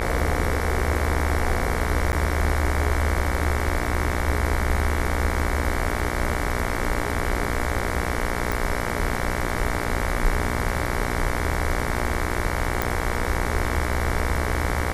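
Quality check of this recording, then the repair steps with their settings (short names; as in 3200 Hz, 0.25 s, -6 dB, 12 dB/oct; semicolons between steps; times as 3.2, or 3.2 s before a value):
buzz 60 Hz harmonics 38 -28 dBFS
2.12–2.13 gap 9.9 ms
8.52 pop
12.82 pop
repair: de-click; de-hum 60 Hz, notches 38; interpolate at 2.12, 9.9 ms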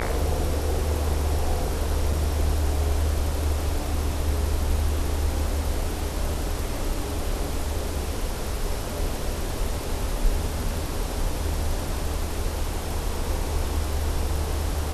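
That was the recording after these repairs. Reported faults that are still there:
none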